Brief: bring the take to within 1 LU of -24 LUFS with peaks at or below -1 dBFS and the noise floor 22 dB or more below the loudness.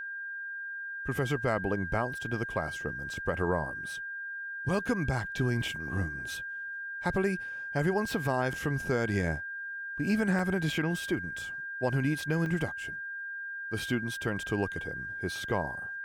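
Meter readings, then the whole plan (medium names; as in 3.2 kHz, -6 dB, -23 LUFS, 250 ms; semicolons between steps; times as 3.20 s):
dropouts 3; longest dropout 2.2 ms; steady tone 1.6 kHz; tone level -36 dBFS; loudness -32.0 LUFS; peak level -15.5 dBFS; loudness target -24.0 LUFS
-> interpolate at 10.39/12.46/13.79 s, 2.2 ms; band-stop 1.6 kHz, Q 30; trim +8 dB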